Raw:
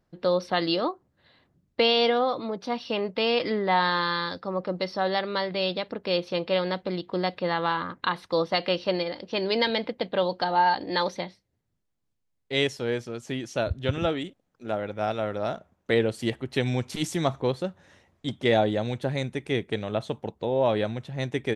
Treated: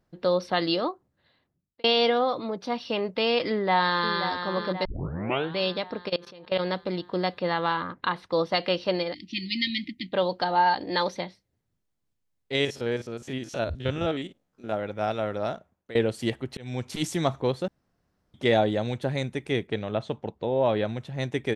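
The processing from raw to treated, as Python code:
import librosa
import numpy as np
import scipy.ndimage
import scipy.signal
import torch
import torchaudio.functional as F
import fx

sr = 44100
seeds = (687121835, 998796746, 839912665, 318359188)

y = fx.echo_throw(x, sr, start_s=3.5, length_s=0.69, ms=530, feedback_pct=55, wet_db=-8.5)
y = fx.level_steps(y, sr, step_db=23, at=(6.08, 6.58), fade=0.02)
y = fx.lowpass(y, sr, hz=3800.0, slope=6, at=(7.81, 8.39))
y = fx.brickwall_bandstop(y, sr, low_hz=350.0, high_hz=1800.0, at=(9.13, 10.12), fade=0.02)
y = fx.spec_steps(y, sr, hold_ms=50, at=(12.55, 14.72))
y = fx.air_absorb(y, sr, metres=82.0, at=(19.67, 20.89))
y = fx.edit(y, sr, fx.fade_out_span(start_s=0.73, length_s=1.11),
    fx.tape_start(start_s=4.85, length_s=0.73),
    fx.fade_out_to(start_s=15.44, length_s=0.51, floor_db=-19.5),
    fx.fade_in_span(start_s=16.57, length_s=0.48, curve='qsin'),
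    fx.room_tone_fill(start_s=17.68, length_s=0.66), tone=tone)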